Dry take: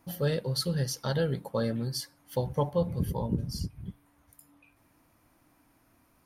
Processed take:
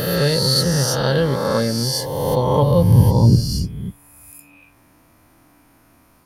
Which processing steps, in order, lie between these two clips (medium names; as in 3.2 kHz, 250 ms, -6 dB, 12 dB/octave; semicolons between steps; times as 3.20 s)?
reverse spectral sustain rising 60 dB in 1.78 s; 2.62–3.40 s: peaking EQ 110 Hz +12.5 dB 0.59 oct; trim +8.5 dB